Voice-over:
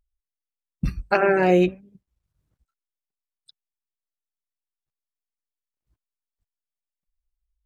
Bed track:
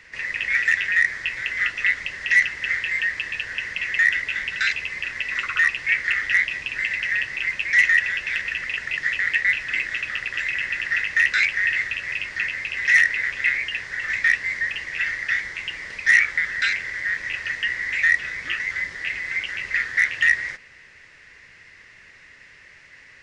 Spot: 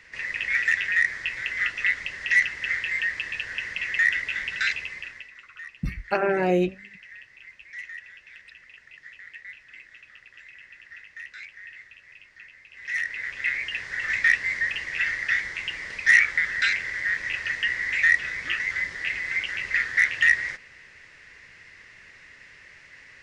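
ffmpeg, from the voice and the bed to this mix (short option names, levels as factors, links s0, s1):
-filter_complex "[0:a]adelay=5000,volume=0.596[s0];[1:a]volume=7.94,afade=t=out:st=4.7:d=0.62:silence=0.112202,afade=t=in:st=12.7:d=1.37:silence=0.0891251[s1];[s0][s1]amix=inputs=2:normalize=0"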